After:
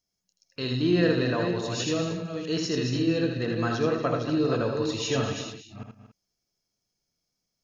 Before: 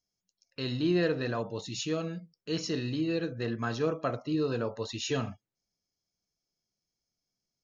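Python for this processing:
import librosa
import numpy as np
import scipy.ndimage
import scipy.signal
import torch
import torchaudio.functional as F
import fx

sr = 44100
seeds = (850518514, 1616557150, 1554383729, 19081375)

y = fx.reverse_delay(x, sr, ms=307, wet_db=-6.5)
y = fx.echo_multitap(y, sr, ms=(80, 113, 195, 234, 284), db=(-5.0, -18.5, -18.5, -13.0, -17.5))
y = y * 10.0 ** (3.0 / 20.0)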